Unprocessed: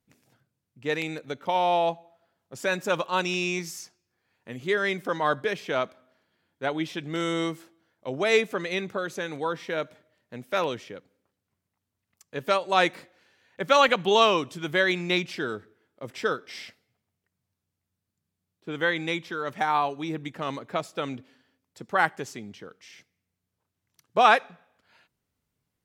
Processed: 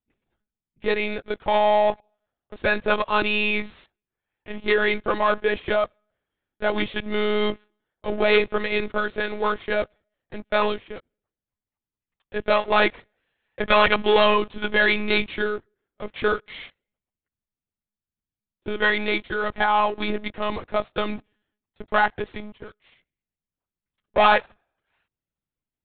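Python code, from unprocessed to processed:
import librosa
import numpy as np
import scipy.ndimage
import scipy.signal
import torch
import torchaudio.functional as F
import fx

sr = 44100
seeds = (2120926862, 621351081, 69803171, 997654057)

y = fx.leveller(x, sr, passes=3)
y = fx.lpc_monotone(y, sr, seeds[0], pitch_hz=210.0, order=16)
y = y * librosa.db_to_amplitude(-5.0)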